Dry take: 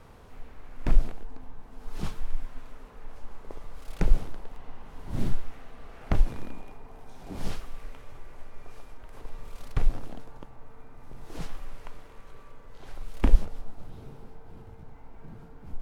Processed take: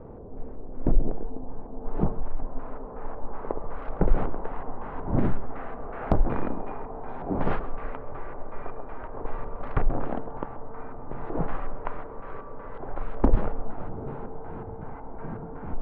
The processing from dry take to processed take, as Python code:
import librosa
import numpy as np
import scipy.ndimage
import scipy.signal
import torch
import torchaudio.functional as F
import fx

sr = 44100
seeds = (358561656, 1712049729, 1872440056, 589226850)

p1 = fx.over_compress(x, sr, threshold_db=-25.0, ratio=-0.5)
p2 = x + (p1 * 10.0 ** (-2.5 / 20.0))
p3 = fx.filter_lfo_lowpass(p2, sr, shape='square', hz=2.7, low_hz=900.0, high_hz=2700.0, q=0.7)
p4 = p3 + fx.echo_single(p3, sr, ms=132, db=-17.5, dry=0)
p5 = fx.filter_sweep_lowpass(p4, sr, from_hz=470.0, to_hz=1400.0, start_s=0.87, end_s=3.93, q=0.89)
p6 = fx.low_shelf(p5, sr, hz=200.0, db=-10.5)
p7 = 10.0 ** (-17.0 / 20.0) * (np.abs((p6 / 10.0 ** (-17.0 / 20.0) + 3.0) % 4.0 - 2.0) - 1.0)
y = p7 * 10.0 ** (9.0 / 20.0)